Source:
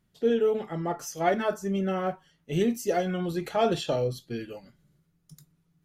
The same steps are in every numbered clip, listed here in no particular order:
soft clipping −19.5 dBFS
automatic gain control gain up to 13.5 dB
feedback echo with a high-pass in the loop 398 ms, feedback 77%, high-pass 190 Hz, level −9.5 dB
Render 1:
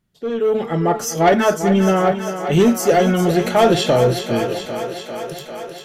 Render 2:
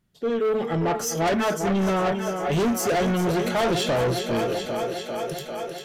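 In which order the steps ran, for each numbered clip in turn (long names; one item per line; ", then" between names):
soft clipping, then automatic gain control, then feedback echo with a high-pass in the loop
automatic gain control, then feedback echo with a high-pass in the loop, then soft clipping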